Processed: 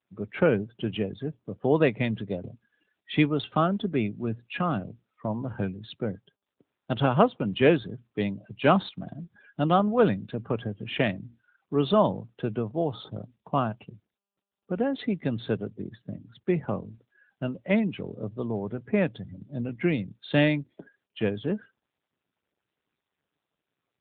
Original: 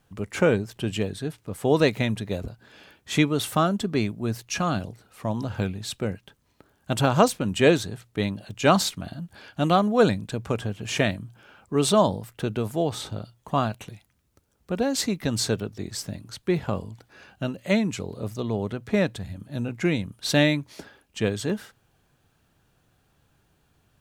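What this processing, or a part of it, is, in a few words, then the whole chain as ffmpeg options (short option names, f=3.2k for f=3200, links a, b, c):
mobile call with aggressive noise cancelling: -filter_complex "[0:a]asettb=1/sr,asplit=3[a][b][c];[a]atrim=end=12.824[d];[b]atrim=start=12.82:end=14.9,asetpts=PTS-STARTPTS,afade=t=in:d=0.004:c=qsin,afade=t=out:st=2.076:d=0.004:c=qsin,lowpass=6.1k[e];[c]atrim=start=14.896[f];[d][e]acrossfade=d=0.004:c1=hsin:c2=qsin[g];[g][f]acrossfade=d=0.004:c1=qsin:c2=hsin,highpass=f=100:w=0.5412,highpass=f=100:w=1.3066,afftdn=nr=31:nf=-40,volume=-1.5dB" -ar 8000 -c:a libopencore_amrnb -b:a 10200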